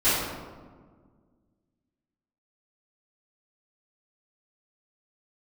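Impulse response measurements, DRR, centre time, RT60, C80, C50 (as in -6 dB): -16.0 dB, 96 ms, 1.6 s, 1.5 dB, -1.5 dB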